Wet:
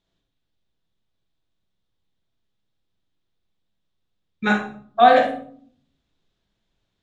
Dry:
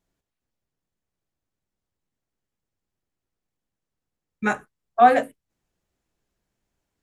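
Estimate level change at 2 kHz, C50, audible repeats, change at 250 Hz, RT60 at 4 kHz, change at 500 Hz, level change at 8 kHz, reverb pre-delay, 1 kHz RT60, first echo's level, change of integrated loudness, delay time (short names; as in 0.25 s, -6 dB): +3.5 dB, 6.0 dB, none, +3.5 dB, 0.40 s, +3.5 dB, n/a, 31 ms, 0.50 s, none, +2.0 dB, none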